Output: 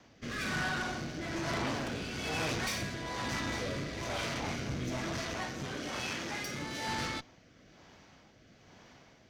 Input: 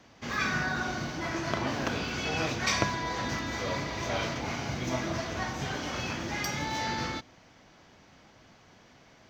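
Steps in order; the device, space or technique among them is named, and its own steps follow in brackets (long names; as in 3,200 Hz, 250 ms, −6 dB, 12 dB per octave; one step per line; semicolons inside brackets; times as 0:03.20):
overdriven rotary cabinet (tube saturation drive 34 dB, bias 0.7; rotating-speaker cabinet horn 1.1 Hz)
0:05.34–0:06.88: low-shelf EQ 120 Hz −10 dB
level +4.5 dB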